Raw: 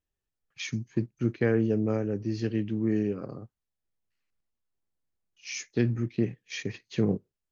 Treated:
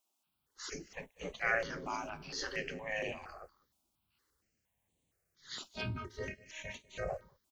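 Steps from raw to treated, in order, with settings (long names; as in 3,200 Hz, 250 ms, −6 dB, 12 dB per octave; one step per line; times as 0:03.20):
0:05.68–0:07.10: phases set to zero 312 Hz
gate on every frequency bin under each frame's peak −20 dB weak
transient designer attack −6 dB, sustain +3 dB
on a send: single-tap delay 196 ms −22.5 dB
on the sum: step-sequenced phaser 4.3 Hz 480–5,100 Hz
level +13 dB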